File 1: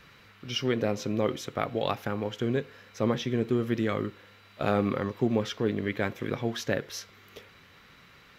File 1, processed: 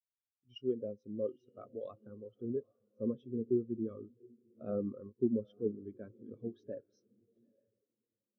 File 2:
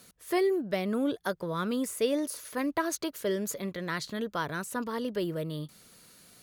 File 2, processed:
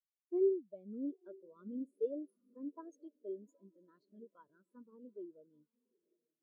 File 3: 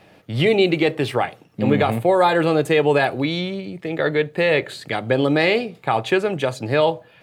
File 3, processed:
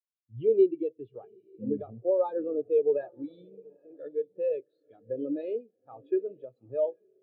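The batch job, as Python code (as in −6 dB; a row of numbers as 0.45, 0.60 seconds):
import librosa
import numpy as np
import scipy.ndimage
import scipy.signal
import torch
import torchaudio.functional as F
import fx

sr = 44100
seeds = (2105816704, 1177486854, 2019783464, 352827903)

y = fx.graphic_eq_31(x, sr, hz=(160, 800, 2000), db=(-9, -6, -11))
y = fx.echo_diffused(y, sr, ms=842, feedback_pct=43, wet_db=-10.5)
y = fx.spectral_expand(y, sr, expansion=2.5)
y = F.gain(torch.from_numpy(y), -6.5).numpy()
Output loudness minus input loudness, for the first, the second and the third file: −9.0, −8.5, −10.5 LU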